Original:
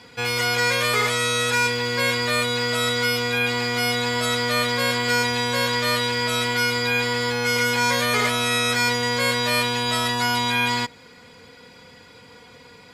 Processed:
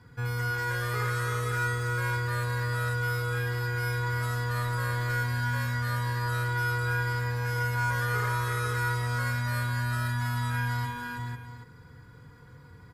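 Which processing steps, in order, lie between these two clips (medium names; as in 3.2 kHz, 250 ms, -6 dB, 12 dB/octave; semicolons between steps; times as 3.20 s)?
FFT filter 140 Hz 0 dB, 220 Hz -16 dB, 340 Hz -12 dB, 610 Hz -23 dB, 1 kHz -15 dB, 1.6 kHz -12 dB, 2.5 kHz -29 dB, 7.2 kHz -23 dB, 15 kHz -12 dB; saturation -26 dBFS, distortion -24 dB; multi-tap echo 56/96/326/495/498/777 ms -8.5/-11/-5.5/-5.5/-11/-14 dB; trim +5 dB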